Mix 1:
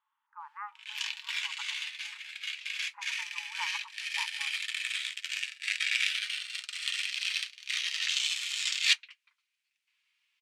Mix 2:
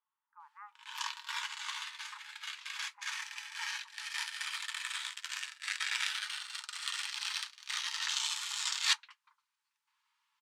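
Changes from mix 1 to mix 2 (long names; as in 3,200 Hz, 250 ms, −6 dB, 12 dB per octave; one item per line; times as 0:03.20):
speech −10.0 dB
background: remove high-pass with resonance 2,400 Hz, resonance Q 2.9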